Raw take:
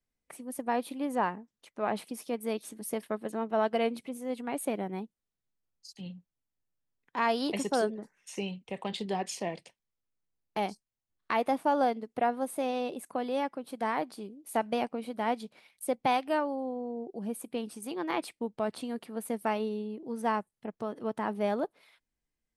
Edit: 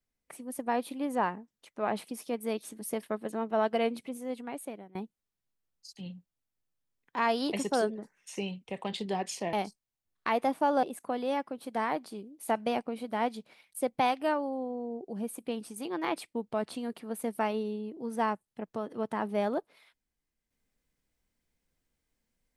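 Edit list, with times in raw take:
4.16–4.95 s: fade out, to -23.5 dB
9.53–10.57 s: delete
11.87–12.89 s: delete

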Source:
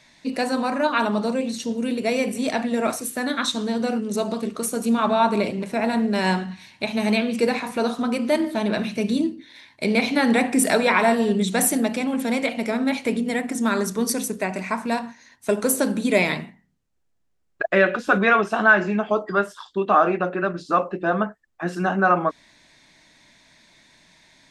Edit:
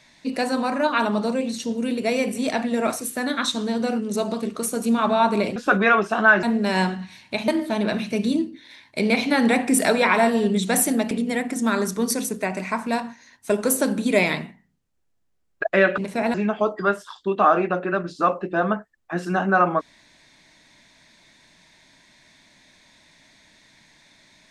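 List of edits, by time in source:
5.56–5.92 s: swap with 17.97–18.84 s
6.97–8.33 s: delete
11.96–13.10 s: delete

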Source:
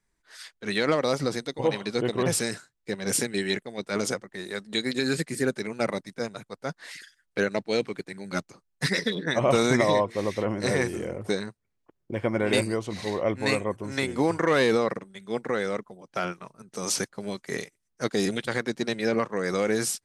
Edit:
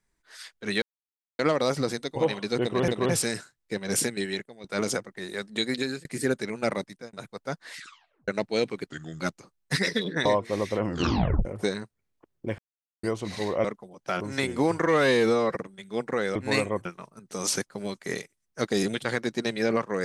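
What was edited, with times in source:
0.82 s: insert silence 0.57 s
2.05–2.31 s: loop, 2 plays
3.22–3.81 s: fade out linear, to -13 dB
4.94–5.22 s: fade out
6.01–6.30 s: fade out
6.94 s: tape stop 0.51 s
8.04–8.31 s: speed 81%
9.36–9.91 s: delete
10.50 s: tape stop 0.61 s
12.24–12.69 s: mute
13.30–13.80 s: swap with 15.72–16.28 s
14.46–14.92 s: stretch 1.5×

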